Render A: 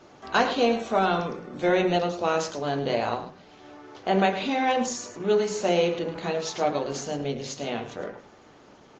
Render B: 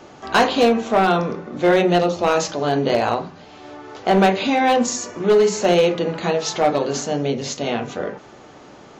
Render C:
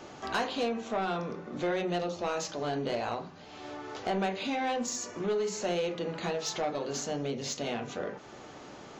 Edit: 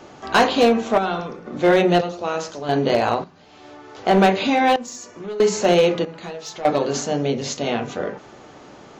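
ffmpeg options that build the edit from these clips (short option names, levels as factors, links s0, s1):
-filter_complex "[0:a]asplit=2[s0][s1];[2:a]asplit=3[s2][s3][s4];[1:a]asplit=6[s5][s6][s7][s8][s9][s10];[s5]atrim=end=0.982[s11];[s0]atrim=start=0.978:end=1.462[s12];[s6]atrim=start=1.458:end=2.012[s13];[s1]atrim=start=2.008:end=2.692[s14];[s7]atrim=start=2.688:end=3.242[s15];[s2]atrim=start=3.238:end=3.982[s16];[s8]atrim=start=3.978:end=4.762[s17];[s3]atrim=start=4.758:end=5.402[s18];[s9]atrim=start=5.398:end=6.052[s19];[s4]atrim=start=6.048:end=6.652[s20];[s10]atrim=start=6.648[s21];[s11][s12]acrossfade=d=0.004:c1=hsin:c2=hsin[s22];[s22][s13]acrossfade=d=0.004:c1=hsin:c2=hsin[s23];[s23][s14]acrossfade=d=0.004:c1=hsin:c2=hsin[s24];[s24][s15]acrossfade=d=0.004:c1=hsin:c2=hsin[s25];[s25][s16]acrossfade=d=0.004:c1=hsin:c2=hsin[s26];[s26][s17]acrossfade=d=0.004:c1=hsin:c2=hsin[s27];[s27][s18]acrossfade=d=0.004:c1=hsin:c2=hsin[s28];[s28][s19]acrossfade=d=0.004:c1=hsin:c2=hsin[s29];[s29][s20]acrossfade=d=0.004:c1=hsin:c2=hsin[s30];[s30][s21]acrossfade=d=0.004:c1=hsin:c2=hsin"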